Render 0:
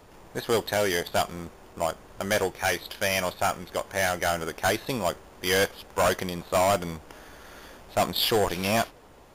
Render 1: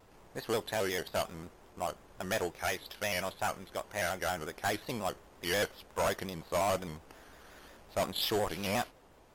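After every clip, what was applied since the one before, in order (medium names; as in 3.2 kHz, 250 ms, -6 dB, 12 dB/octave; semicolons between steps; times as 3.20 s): vibrato with a chosen wave square 5.6 Hz, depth 100 cents; trim -8 dB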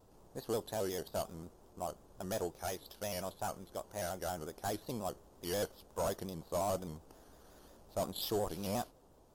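peaking EQ 2.1 kHz -15 dB 1.4 oct; trim -2 dB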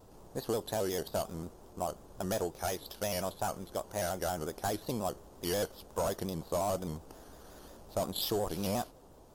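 compression 3:1, threshold -37 dBFS, peak gain reduction 5.5 dB; trim +7 dB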